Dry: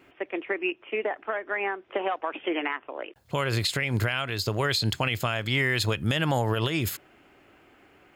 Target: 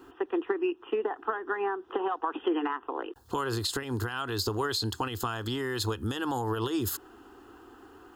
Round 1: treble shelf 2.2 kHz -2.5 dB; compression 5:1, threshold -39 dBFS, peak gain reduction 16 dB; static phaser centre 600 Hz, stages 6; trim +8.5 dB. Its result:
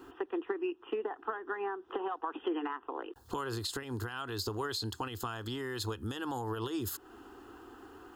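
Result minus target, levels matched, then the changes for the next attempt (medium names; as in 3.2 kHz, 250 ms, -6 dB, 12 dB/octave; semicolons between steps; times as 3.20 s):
compression: peak gain reduction +6 dB
change: compression 5:1, threshold -31.5 dBFS, peak gain reduction 10 dB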